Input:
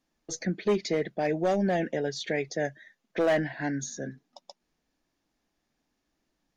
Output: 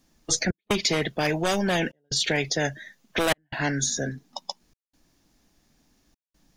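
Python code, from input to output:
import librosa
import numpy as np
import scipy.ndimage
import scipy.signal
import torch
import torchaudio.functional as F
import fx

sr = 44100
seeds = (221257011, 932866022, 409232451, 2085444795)

y = fx.noise_reduce_blind(x, sr, reduce_db=9)
y = fx.step_gate(y, sr, bpm=149, pattern='xxxxx..xxxxxxx', floor_db=-60.0, edge_ms=4.5)
y = fx.bass_treble(y, sr, bass_db=8, treble_db=7)
y = fx.spectral_comp(y, sr, ratio=2.0)
y = y * librosa.db_to_amplitude(5.0)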